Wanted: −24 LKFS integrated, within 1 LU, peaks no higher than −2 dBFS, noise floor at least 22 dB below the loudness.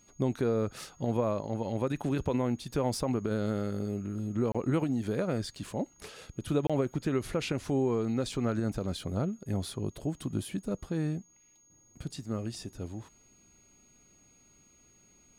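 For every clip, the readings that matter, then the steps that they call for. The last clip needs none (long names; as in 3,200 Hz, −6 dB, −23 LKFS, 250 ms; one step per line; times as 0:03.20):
number of dropouts 2; longest dropout 26 ms; interfering tone 6,600 Hz; level of the tone −61 dBFS; integrated loudness −32.5 LKFS; sample peak −16.5 dBFS; target loudness −24.0 LKFS
→ repair the gap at 0:04.52/0:06.67, 26 ms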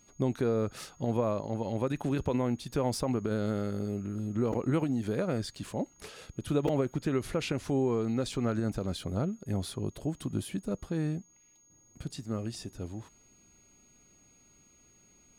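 number of dropouts 0; interfering tone 6,600 Hz; level of the tone −61 dBFS
→ notch filter 6,600 Hz, Q 30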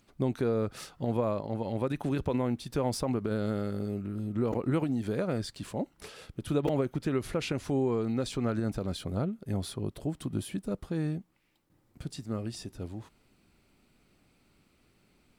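interfering tone none found; integrated loudness −32.5 LKFS; sample peak −16.5 dBFS; target loudness −24.0 LKFS
→ level +8.5 dB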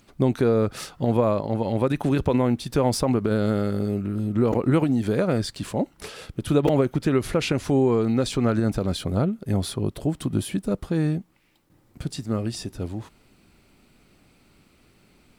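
integrated loudness −24.0 LKFS; sample peak −8.0 dBFS; background noise floor −60 dBFS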